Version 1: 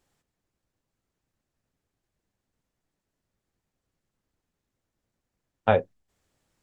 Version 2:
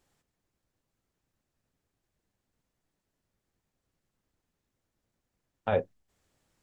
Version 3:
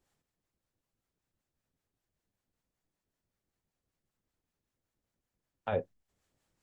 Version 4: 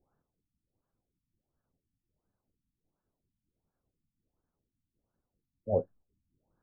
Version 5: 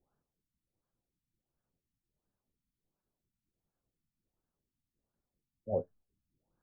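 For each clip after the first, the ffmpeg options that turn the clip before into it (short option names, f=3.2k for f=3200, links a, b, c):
-af "alimiter=limit=-15.5dB:level=0:latency=1:release=32"
-filter_complex "[0:a]acrossover=split=590[a][b];[a]aeval=exprs='val(0)*(1-0.5/2+0.5/2*cos(2*PI*5.2*n/s))':c=same[c];[b]aeval=exprs='val(0)*(1-0.5/2-0.5/2*cos(2*PI*5.2*n/s))':c=same[d];[c][d]amix=inputs=2:normalize=0,volume=-3dB"
-af "afftfilt=real='re*lt(b*sr/1024,280*pow(1800/280,0.5+0.5*sin(2*PI*1.4*pts/sr)))':imag='im*lt(b*sr/1024,280*pow(1800/280,0.5+0.5*sin(2*PI*1.4*pts/sr)))':win_size=1024:overlap=0.75,volume=4dB"
-af "flanger=delay=4.8:depth=1.2:regen=-75:speed=0.4:shape=triangular"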